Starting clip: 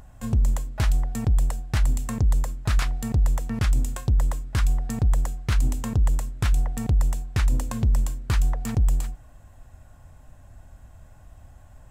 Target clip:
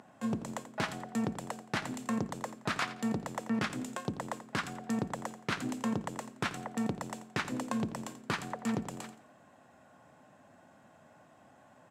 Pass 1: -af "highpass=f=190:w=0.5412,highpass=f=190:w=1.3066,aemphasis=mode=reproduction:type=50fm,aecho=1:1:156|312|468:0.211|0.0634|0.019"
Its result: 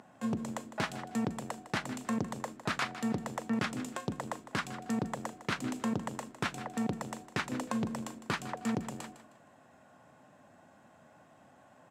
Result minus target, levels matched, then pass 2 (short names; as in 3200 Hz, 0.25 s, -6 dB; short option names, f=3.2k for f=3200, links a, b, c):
echo 70 ms late
-af "highpass=f=190:w=0.5412,highpass=f=190:w=1.3066,aemphasis=mode=reproduction:type=50fm,aecho=1:1:86|172|258:0.211|0.0634|0.019"